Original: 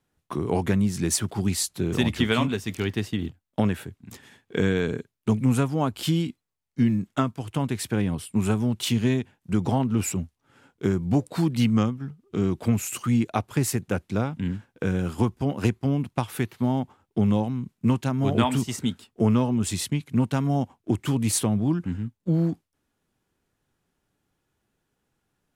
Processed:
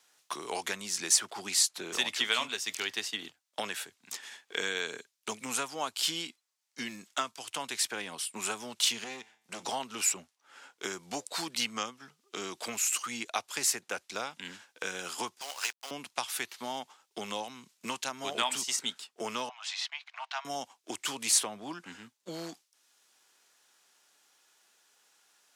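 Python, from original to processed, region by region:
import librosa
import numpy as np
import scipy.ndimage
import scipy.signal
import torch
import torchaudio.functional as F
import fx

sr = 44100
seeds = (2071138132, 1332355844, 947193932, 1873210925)

y = fx.chain(x, sr, fx.clip_hard(threshold_db=-20.0),
    fx.comb_fb(f0_hz=110.0, decay_s=0.52, harmonics='all', damping=0.0, mix_pct=50), at=(9.04, 9.63))
y = fx.chain(y, sr, fx.highpass(hz=980.0, slope=12),
    fx.quant_companded(bits=4), at=(15.41, 15.91))
y = fx.chain(y, sr, fx.steep_highpass(hz=650.0, slope=96),
    fx.air_absorb(metres=240.0), at=(19.49, 20.45))
y = scipy.signal.sosfilt(scipy.signal.butter(2, 740.0, 'highpass', fs=sr, output='sos'), y)
y = fx.peak_eq(y, sr, hz=5800.0, db=10.5, octaves=1.8)
y = fx.band_squash(y, sr, depth_pct=40)
y = y * 10.0 ** (-3.0 / 20.0)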